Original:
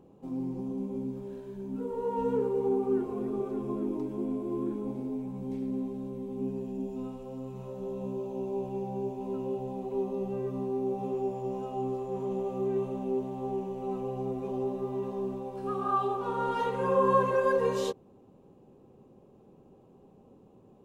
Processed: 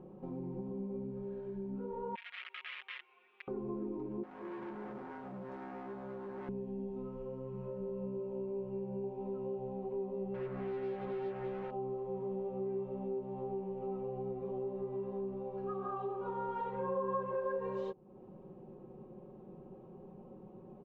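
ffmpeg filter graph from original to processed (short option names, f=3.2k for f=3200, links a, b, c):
-filter_complex "[0:a]asettb=1/sr,asplit=3[a][b][c];[a]atrim=end=2.154[d];[b]atrim=start=2.15:end=3.48,asetpts=PTS-STARTPTS,afade=t=in:d=0.004:c=qsin,afade=t=out:st=1.326:d=0.004:c=qsin,aemphasis=mode=production:type=bsi,aeval=exprs='(mod(20*val(0)+1,2)-1)/20':c=same,asuperpass=centerf=2700:order=4:qfactor=1.9[e];[c]atrim=start=3.476[f];[d][e]acrossfade=d=0.004:c1=hsin:c2=qsin[g];[g][f]acrossfade=d=0.004:c1=qsin:c2=hsin,asettb=1/sr,asplit=3[h][i][j];[h]atrim=end=4.234[k];[i]atrim=start=4.23:end=6.49,asetpts=PTS-STARTPTS,afade=t=in:d=0.004:c=qsin,afade=t=out:st=2.256:d=0.004:c=qsin,asoftclip=type=hard:threshold=-40dB,aemphasis=mode=production:type=bsi[l];[j]atrim=start=6.486[m];[k][l]acrossfade=d=0.004:c1=hsin:c2=qsin[n];[n][m]acrossfade=d=0.004:c1=qsin:c2=hsin,asettb=1/sr,asplit=3[o][p][q];[o]atrim=end=7.024[r];[p]atrim=start=7.02:end=9.04,asetpts=PTS-STARTPTS,afade=t=in:d=0.004:c=qsin,afade=t=out:st=2.016:d=0.004:c=qsin,equalizer=f=3.7k:w=6.7:g=-8.5,bandreject=f=760:w=5.4[s];[q]atrim=start=9.036[t];[r][s]acrossfade=d=0.004:c1=hsin:c2=qsin[u];[u][t]acrossfade=d=0.004:c1=qsin:c2=hsin,asettb=1/sr,asplit=3[v][w][x];[v]atrim=end=10.344[y];[w]atrim=start=10.34:end=11.71,asetpts=PTS-STARTPTS,afade=t=in:d=0.004:c=qsin,afade=t=out:st=1.366:d=0.004:c=qsin,bandreject=f=50:t=h:w=6,bandreject=f=100:t=h:w=6,bandreject=f=150:t=h:w=6,bandreject=f=200:t=h:w=6,bandreject=f=250:t=h:w=6,bandreject=f=300:t=h:w=6,bandreject=f=350:t=h:w=6,bandreject=f=400:t=h:w=6,acrusher=bits=5:mix=0:aa=0.5[z];[x]atrim=start=11.706[aa];[y][z]acrossfade=d=0.004:c1=hsin:c2=qsin[ab];[ab][aa]acrossfade=d=0.004:c1=qsin:c2=hsin,lowpass=1.8k,aecho=1:1:5.5:0.66,acompressor=threshold=-45dB:ratio=2.5,volume=2.5dB"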